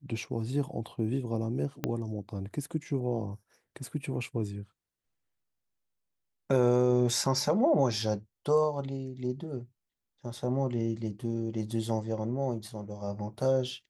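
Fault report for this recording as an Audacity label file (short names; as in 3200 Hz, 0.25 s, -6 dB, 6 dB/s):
1.840000	1.840000	pop -15 dBFS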